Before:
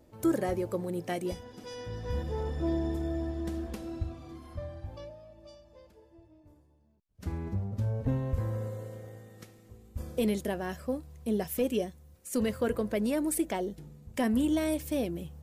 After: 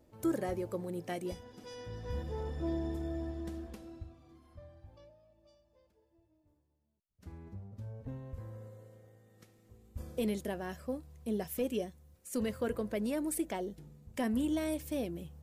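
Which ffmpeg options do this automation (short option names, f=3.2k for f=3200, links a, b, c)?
-af "volume=3.5dB,afade=t=out:st=3.3:d=0.81:silence=0.375837,afade=t=in:st=9.19:d=0.78:silence=0.375837"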